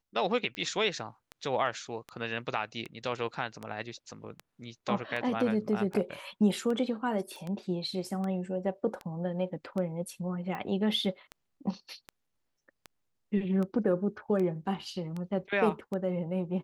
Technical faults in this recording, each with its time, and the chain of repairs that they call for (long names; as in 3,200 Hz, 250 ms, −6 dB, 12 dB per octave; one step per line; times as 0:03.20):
scratch tick 78 rpm −25 dBFS
0:07.36: click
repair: click removal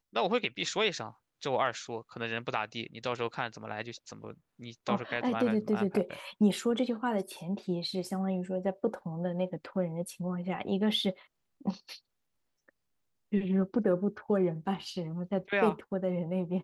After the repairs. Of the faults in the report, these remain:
none of them is left